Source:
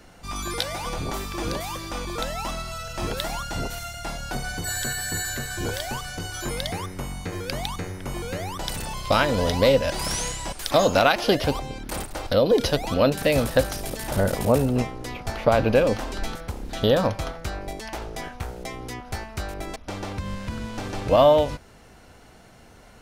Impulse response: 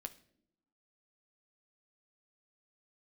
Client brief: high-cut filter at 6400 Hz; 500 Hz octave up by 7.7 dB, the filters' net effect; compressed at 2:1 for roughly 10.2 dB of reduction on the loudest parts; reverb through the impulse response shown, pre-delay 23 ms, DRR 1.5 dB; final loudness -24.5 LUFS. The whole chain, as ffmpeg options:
-filter_complex "[0:a]lowpass=6.4k,equalizer=f=500:t=o:g=9,acompressor=threshold=-25dB:ratio=2,asplit=2[a][b];[1:a]atrim=start_sample=2205,adelay=23[c];[b][c]afir=irnorm=-1:irlink=0,volume=2.5dB[d];[a][d]amix=inputs=2:normalize=0"

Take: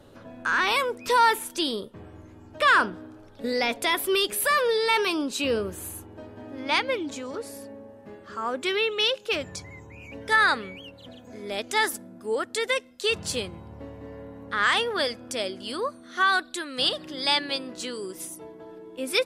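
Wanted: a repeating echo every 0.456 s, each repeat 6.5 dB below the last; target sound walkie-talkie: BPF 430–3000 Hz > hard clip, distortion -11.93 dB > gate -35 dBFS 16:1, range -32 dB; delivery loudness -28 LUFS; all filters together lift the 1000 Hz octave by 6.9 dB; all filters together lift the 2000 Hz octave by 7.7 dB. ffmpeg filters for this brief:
-af "highpass=430,lowpass=3k,equalizer=f=1k:t=o:g=6,equalizer=f=2k:t=o:g=8.5,aecho=1:1:456|912|1368|1824|2280|2736:0.473|0.222|0.105|0.0491|0.0231|0.0109,asoftclip=type=hard:threshold=-11.5dB,agate=range=-32dB:threshold=-35dB:ratio=16,volume=-7dB"

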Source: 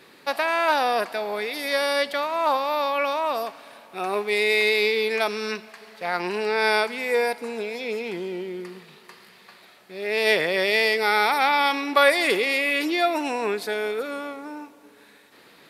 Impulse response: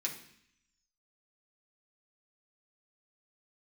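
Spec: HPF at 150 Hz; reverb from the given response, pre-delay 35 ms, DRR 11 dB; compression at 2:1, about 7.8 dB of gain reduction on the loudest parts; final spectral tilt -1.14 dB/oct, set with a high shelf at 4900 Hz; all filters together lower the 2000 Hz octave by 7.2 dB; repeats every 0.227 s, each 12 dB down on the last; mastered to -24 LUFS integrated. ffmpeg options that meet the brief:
-filter_complex "[0:a]highpass=150,equalizer=f=2k:t=o:g=-8,highshelf=f=4.9k:g=-5.5,acompressor=threshold=-29dB:ratio=2,aecho=1:1:227|454|681:0.251|0.0628|0.0157,asplit=2[a][b];[1:a]atrim=start_sample=2205,adelay=35[c];[b][c]afir=irnorm=-1:irlink=0,volume=-12.5dB[d];[a][d]amix=inputs=2:normalize=0,volume=5.5dB"

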